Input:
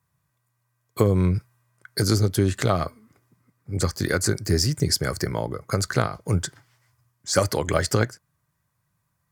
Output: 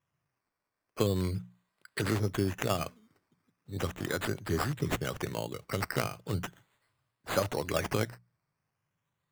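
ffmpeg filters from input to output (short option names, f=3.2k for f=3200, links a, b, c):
-filter_complex "[0:a]asettb=1/sr,asplit=3[a][b][c];[a]atrim=end=3.954[d];[b]atrim=start=3.95:end=4.44,asetpts=PTS-STARTPTS,afade=t=in:d=0.004:c=qsin,afade=t=out:st=0.486:d=0.004:c=qsin,aeval=exprs='if(lt(val(0),0),0.708*val(0),val(0))':c=same[e];[c]atrim=start=4.436[f];[d][e]acrossfade=d=0.004:c1=hsin:c2=qsin[g];[g][f]acrossfade=d=0.004:c1=qsin:c2=hsin,highpass=97,acrusher=samples=10:mix=1:aa=0.000001:lfo=1:lforange=6:lforate=0.39,bandreject=f=60:t=h:w=6,bandreject=f=120:t=h:w=6,bandreject=f=180:t=h:w=6,volume=-8dB"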